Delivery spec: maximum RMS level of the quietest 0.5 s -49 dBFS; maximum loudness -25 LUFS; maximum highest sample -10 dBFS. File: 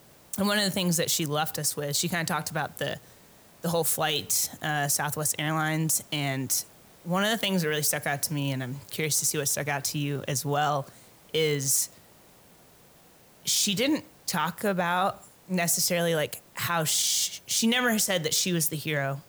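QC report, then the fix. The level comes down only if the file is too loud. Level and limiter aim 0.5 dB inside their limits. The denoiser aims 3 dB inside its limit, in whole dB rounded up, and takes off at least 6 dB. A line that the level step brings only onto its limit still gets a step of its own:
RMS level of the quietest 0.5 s -56 dBFS: OK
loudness -26.5 LUFS: OK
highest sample -12.0 dBFS: OK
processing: none

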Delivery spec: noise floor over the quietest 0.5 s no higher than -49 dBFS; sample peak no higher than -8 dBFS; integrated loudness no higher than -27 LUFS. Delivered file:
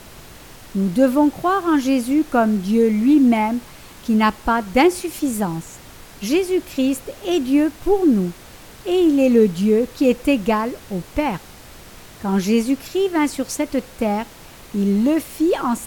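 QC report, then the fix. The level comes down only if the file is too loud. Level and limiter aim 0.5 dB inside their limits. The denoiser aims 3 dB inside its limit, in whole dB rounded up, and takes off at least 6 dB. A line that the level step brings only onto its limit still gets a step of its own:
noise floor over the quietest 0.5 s -41 dBFS: fail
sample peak -4.0 dBFS: fail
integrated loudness -19.0 LUFS: fail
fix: gain -8.5 dB

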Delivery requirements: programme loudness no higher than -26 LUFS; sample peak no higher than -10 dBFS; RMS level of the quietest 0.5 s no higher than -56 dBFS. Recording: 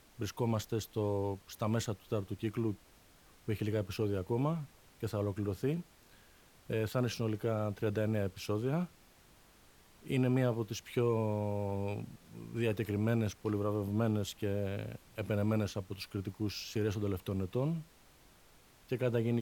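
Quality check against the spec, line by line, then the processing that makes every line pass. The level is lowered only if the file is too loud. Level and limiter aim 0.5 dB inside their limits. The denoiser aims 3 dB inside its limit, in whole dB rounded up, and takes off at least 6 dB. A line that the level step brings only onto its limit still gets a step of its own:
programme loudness -35.5 LUFS: OK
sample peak -18.5 dBFS: OK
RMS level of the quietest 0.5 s -62 dBFS: OK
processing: none

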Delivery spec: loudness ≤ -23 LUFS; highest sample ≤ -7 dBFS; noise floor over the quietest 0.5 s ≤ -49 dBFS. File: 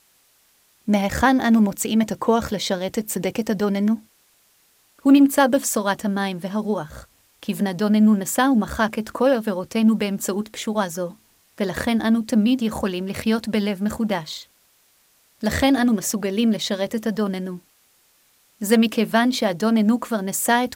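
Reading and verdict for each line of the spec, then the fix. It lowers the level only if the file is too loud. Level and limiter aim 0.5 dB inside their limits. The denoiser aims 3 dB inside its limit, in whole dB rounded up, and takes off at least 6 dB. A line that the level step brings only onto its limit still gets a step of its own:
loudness -21.0 LUFS: fail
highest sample -5.5 dBFS: fail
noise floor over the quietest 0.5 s -60 dBFS: OK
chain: gain -2.5 dB

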